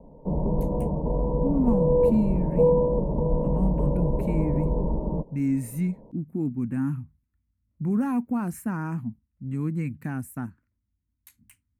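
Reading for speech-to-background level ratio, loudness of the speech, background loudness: -3.5 dB, -29.0 LUFS, -25.5 LUFS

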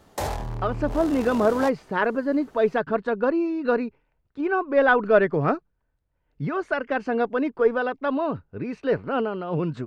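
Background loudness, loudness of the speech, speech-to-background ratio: -33.0 LUFS, -24.0 LUFS, 9.0 dB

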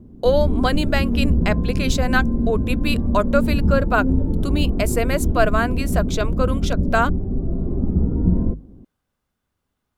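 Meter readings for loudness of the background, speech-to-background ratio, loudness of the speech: -22.5 LUFS, -0.5 dB, -23.0 LUFS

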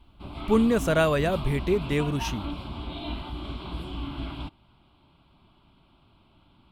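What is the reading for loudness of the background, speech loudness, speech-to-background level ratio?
-36.0 LUFS, -25.0 LUFS, 11.0 dB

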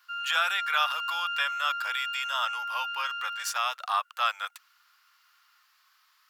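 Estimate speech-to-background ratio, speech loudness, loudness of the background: 2.5 dB, -30.0 LUFS, -32.5 LUFS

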